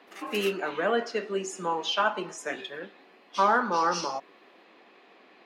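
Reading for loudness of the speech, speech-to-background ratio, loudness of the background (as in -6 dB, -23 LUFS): -28.5 LUFS, 14.0 dB, -42.5 LUFS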